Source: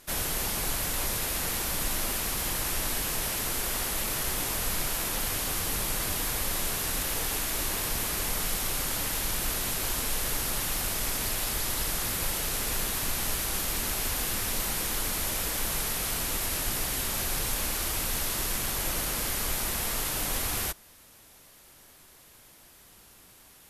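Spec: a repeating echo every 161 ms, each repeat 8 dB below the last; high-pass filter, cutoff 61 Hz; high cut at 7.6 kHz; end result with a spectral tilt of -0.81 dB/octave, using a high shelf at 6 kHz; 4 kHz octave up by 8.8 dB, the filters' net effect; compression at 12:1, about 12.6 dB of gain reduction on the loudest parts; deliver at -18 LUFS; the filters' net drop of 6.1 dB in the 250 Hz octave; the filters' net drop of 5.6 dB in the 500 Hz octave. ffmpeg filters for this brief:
-af "highpass=61,lowpass=7600,equalizer=f=250:t=o:g=-7,equalizer=f=500:t=o:g=-5.5,equalizer=f=4000:t=o:g=9,highshelf=f=6000:g=6.5,acompressor=threshold=0.0126:ratio=12,aecho=1:1:161|322|483|644|805:0.398|0.159|0.0637|0.0255|0.0102,volume=9.44"

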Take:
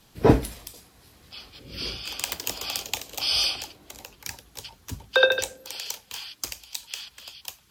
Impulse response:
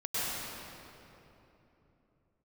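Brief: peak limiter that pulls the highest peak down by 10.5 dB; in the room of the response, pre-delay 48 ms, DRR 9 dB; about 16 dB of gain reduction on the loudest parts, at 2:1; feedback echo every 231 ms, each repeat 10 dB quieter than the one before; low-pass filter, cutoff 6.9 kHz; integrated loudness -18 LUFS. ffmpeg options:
-filter_complex "[0:a]lowpass=6900,acompressor=threshold=0.00891:ratio=2,alimiter=level_in=1.58:limit=0.0631:level=0:latency=1,volume=0.631,aecho=1:1:231|462|693|924:0.316|0.101|0.0324|0.0104,asplit=2[s0][s1];[1:a]atrim=start_sample=2205,adelay=48[s2];[s1][s2]afir=irnorm=-1:irlink=0,volume=0.141[s3];[s0][s3]amix=inputs=2:normalize=0,volume=14.1"

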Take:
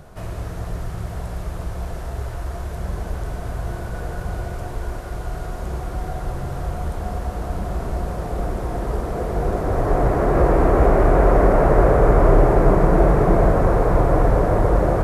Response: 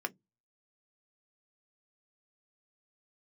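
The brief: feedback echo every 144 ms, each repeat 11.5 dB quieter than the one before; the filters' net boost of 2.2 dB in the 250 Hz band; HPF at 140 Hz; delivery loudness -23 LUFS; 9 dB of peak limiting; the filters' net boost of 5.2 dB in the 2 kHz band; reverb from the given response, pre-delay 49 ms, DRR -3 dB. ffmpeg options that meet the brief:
-filter_complex "[0:a]highpass=140,equalizer=f=250:t=o:g=4,equalizer=f=2000:t=o:g=7,alimiter=limit=0.237:level=0:latency=1,aecho=1:1:144|288|432:0.266|0.0718|0.0194,asplit=2[s0][s1];[1:a]atrim=start_sample=2205,adelay=49[s2];[s1][s2]afir=irnorm=-1:irlink=0,volume=0.944[s3];[s0][s3]amix=inputs=2:normalize=0,volume=0.708"

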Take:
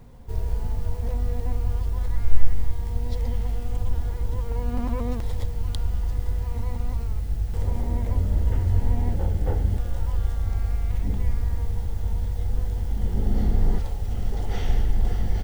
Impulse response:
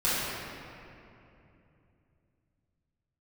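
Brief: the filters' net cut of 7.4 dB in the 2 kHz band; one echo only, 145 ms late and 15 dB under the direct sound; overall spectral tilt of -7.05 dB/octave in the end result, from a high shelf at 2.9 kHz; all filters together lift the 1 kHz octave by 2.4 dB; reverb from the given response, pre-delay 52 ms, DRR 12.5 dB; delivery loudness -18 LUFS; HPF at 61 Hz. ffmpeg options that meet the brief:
-filter_complex "[0:a]highpass=61,equalizer=f=1000:t=o:g=5.5,equalizer=f=2000:t=o:g=-9,highshelf=f=2900:g=-6.5,aecho=1:1:145:0.178,asplit=2[s0][s1];[1:a]atrim=start_sample=2205,adelay=52[s2];[s1][s2]afir=irnorm=-1:irlink=0,volume=0.0501[s3];[s0][s3]amix=inputs=2:normalize=0,volume=4.47"

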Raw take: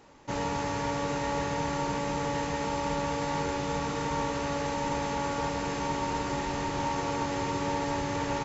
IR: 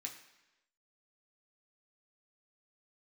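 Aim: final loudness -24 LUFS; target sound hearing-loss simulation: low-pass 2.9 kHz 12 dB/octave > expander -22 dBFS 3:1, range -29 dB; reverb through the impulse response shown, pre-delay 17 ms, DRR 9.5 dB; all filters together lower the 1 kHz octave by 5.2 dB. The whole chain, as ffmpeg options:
-filter_complex "[0:a]equalizer=f=1000:t=o:g=-6,asplit=2[s0][s1];[1:a]atrim=start_sample=2205,adelay=17[s2];[s1][s2]afir=irnorm=-1:irlink=0,volume=0.447[s3];[s0][s3]amix=inputs=2:normalize=0,lowpass=2900,agate=range=0.0355:threshold=0.0794:ratio=3,volume=29.9"

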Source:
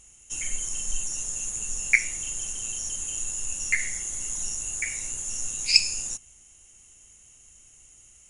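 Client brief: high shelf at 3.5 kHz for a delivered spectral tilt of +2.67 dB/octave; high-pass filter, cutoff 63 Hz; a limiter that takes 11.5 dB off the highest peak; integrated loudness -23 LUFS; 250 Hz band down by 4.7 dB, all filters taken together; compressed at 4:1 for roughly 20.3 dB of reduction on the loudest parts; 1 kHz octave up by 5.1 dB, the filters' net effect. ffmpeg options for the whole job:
-af "highpass=63,equalizer=f=250:t=o:g=-7,equalizer=f=1000:t=o:g=6,highshelf=f=3500:g=8.5,acompressor=threshold=0.0251:ratio=4,volume=3.55,alimiter=limit=0.178:level=0:latency=1"

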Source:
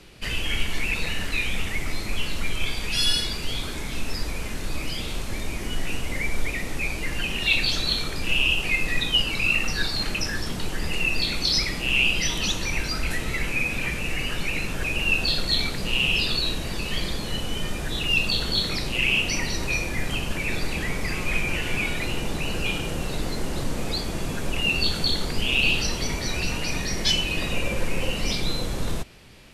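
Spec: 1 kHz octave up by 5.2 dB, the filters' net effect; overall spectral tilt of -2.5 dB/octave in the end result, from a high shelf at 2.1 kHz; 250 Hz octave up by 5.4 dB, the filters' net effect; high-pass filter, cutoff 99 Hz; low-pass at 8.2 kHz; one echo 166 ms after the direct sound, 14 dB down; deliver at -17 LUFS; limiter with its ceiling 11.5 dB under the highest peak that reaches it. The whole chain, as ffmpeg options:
-af "highpass=99,lowpass=8200,equalizer=f=250:t=o:g=7,equalizer=f=1000:t=o:g=4.5,highshelf=f=2100:g=7.5,alimiter=limit=0.178:level=0:latency=1,aecho=1:1:166:0.2,volume=2"

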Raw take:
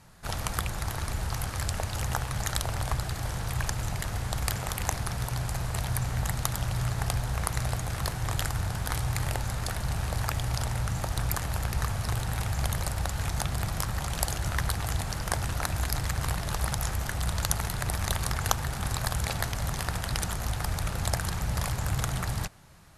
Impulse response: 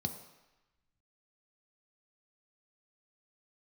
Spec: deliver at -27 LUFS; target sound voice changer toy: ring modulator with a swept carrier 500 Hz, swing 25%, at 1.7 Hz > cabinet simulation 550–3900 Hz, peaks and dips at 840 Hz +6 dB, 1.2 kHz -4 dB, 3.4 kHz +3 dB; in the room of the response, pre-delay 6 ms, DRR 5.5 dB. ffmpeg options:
-filter_complex "[0:a]asplit=2[s0][s1];[1:a]atrim=start_sample=2205,adelay=6[s2];[s1][s2]afir=irnorm=-1:irlink=0,volume=0.473[s3];[s0][s3]amix=inputs=2:normalize=0,aeval=exprs='val(0)*sin(2*PI*500*n/s+500*0.25/1.7*sin(2*PI*1.7*n/s))':c=same,highpass=550,equalizer=f=840:t=q:w=4:g=6,equalizer=f=1200:t=q:w=4:g=-4,equalizer=f=3400:t=q:w=4:g=3,lowpass=f=3900:w=0.5412,lowpass=f=3900:w=1.3066,volume=1.88"

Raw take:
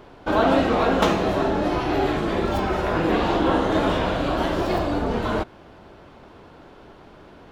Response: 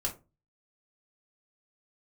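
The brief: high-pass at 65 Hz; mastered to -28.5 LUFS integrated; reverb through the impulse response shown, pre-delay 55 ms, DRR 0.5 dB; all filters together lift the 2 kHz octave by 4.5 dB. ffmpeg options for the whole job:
-filter_complex "[0:a]highpass=65,equalizer=f=2000:t=o:g=6,asplit=2[s0][s1];[1:a]atrim=start_sample=2205,adelay=55[s2];[s1][s2]afir=irnorm=-1:irlink=0,volume=0.631[s3];[s0][s3]amix=inputs=2:normalize=0,volume=0.299"

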